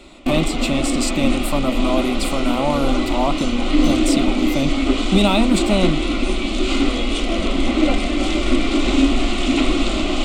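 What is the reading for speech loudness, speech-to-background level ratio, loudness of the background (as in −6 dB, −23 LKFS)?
−22.0 LKFS, −1.5 dB, −20.5 LKFS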